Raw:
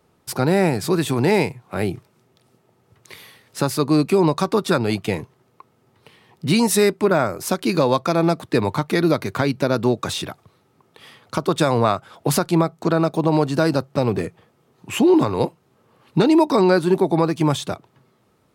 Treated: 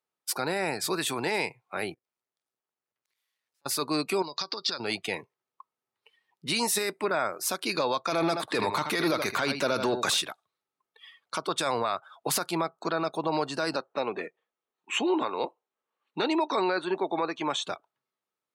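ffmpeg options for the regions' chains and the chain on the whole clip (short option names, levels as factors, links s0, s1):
-filter_complex "[0:a]asettb=1/sr,asplit=3[s0][s1][s2];[s0]atrim=end=1.944[s3];[s1]atrim=start=1.94:end=3.66,asetpts=PTS-STARTPTS,afade=t=in:d=0.004:c=qsin,afade=t=out:st=1.716:d=0.004:c=qsin,acompressor=threshold=0.00251:ratio=4:attack=3.2:release=140:knee=1:detection=peak,aeval=exprs='max(val(0),0)':c=same[s4];[s2]atrim=start=3.656[s5];[s3][s4]acrossfade=d=0.004:c1=hsin:c2=qsin[s6];[s6][s5]acrossfade=d=0.004:c1=qsin:c2=hsin,asettb=1/sr,asplit=3[s7][s8][s9];[s7]atrim=end=4.224[s10];[s8]atrim=start=4.22:end=4.8,asetpts=PTS-STARTPTS,afade=t=in:d=0.004:c=qsin,afade=t=out:st=0.576:d=0.004:c=qsin,acompressor=threshold=0.0631:ratio=20:attack=3.2:release=140:knee=1:detection=peak,lowpass=f=4800:t=q:w=6[s11];[s9]atrim=start=4.796[s12];[s10][s11]acrossfade=d=0.004:c1=hsin:c2=qsin[s13];[s13][s12]acrossfade=d=0.004:c1=qsin:c2=hsin,asettb=1/sr,asplit=3[s14][s15][s16];[s14]atrim=end=8.104[s17];[s15]atrim=start=8.1:end=10.21,asetpts=PTS-STARTPTS,afade=t=in:d=0.004:c=qsin,afade=t=out:st=2.106:d=0.004:c=qsin,acontrast=80,aecho=1:1:79:0.266,atrim=end_sample=93051[s18];[s16]atrim=start=10.206[s19];[s17][s18]acrossfade=d=0.004:c1=hsin:c2=qsin[s20];[s20][s19]acrossfade=d=0.004:c1=qsin:c2=hsin,asettb=1/sr,asplit=3[s21][s22][s23];[s21]atrim=end=13.764[s24];[s22]atrim=start=13.76:end=17.64,asetpts=PTS-STARTPTS,afade=t=in:d=0.004:c=qsin,afade=t=out:st=3.876:d=0.004:c=qsin,highpass=220,lowpass=6400,bandreject=f=4900:w=5.1[s25];[s23]atrim=start=17.636[s26];[s24][s25]acrossfade=d=0.004:c1=hsin:c2=qsin[s27];[s27][s26]acrossfade=d=0.004:c1=qsin:c2=hsin,highpass=f=1300:p=1,afftdn=nr=22:nf=-44,alimiter=limit=0.141:level=0:latency=1:release=13"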